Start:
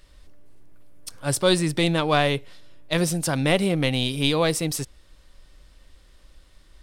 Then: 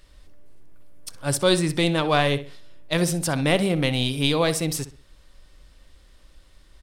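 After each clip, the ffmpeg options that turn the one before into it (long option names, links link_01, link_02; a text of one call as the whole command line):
ffmpeg -i in.wav -filter_complex "[0:a]asplit=2[link_01][link_02];[link_02]adelay=63,lowpass=frequency=3500:poles=1,volume=-13dB,asplit=2[link_03][link_04];[link_04]adelay=63,lowpass=frequency=3500:poles=1,volume=0.34,asplit=2[link_05][link_06];[link_06]adelay=63,lowpass=frequency=3500:poles=1,volume=0.34[link_07];[link_01][link_03][link_05][link_07]amix=inputs=4:normalize=0" out.wav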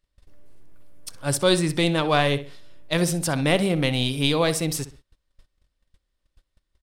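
ffmpeg -i in.wav -af "agate=range=-24dB:threshold=-44dB:ratio=16:detection=peak" out.wav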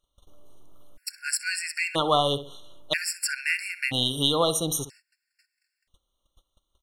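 ffmpeg -i in.wav -filter_complex "[0:a]lowshelf=frequency=420:gain=-11,asplit=2[link_01][link_02];[link_02]acompressor=threshold=-32dB:ratio=6,volume=2dB[link_03];[link_01][link_03]amix=inputs=2:normalize=0,afftfilt=real='re*gt(sin(2*PI*0.51*pts/sr)*(1-2*mod(floor(b*sr/1024/1400),2)),0)':imag='im*gt(sin(2*PI*0.51*pts/sr)*(1-2*mod(floor(b*sr/1024/1400),2)),0)':win_size=1024:overlap=0.75" out.wav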